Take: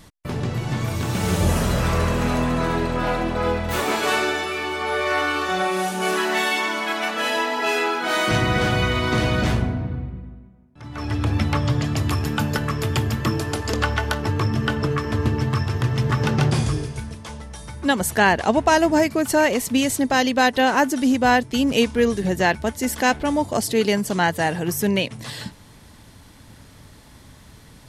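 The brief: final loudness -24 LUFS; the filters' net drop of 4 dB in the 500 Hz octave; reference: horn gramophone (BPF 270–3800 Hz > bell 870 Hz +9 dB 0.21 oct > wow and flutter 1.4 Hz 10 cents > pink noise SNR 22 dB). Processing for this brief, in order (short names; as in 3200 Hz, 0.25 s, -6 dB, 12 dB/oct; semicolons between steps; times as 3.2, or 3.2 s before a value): BPF 270–3800 Hz; bell 500 Hz -5 dB; bell 870 Hz +9 dB 0.21 oct; wow and flutter 1.4 Hz 10 cents; pink noise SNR 22 dB; gain -1 dB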